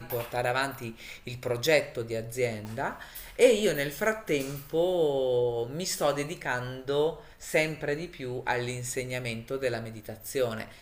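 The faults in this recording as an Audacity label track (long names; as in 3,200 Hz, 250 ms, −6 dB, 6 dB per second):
2.650000	2.650000	click −26 dBFS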